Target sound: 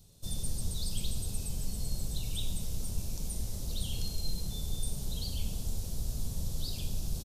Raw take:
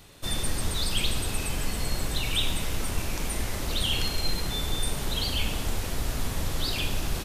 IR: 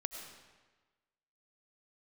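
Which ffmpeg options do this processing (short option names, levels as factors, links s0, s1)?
-af "firequalizer=gain_entry='entry(190,0);entry(290,-11);entry(470,-8);entry(1100,-18);entry(1900,-23);entry(3800,-7);entry(5500,-2)':delay=0.05:min_phase=1,volume=0.596"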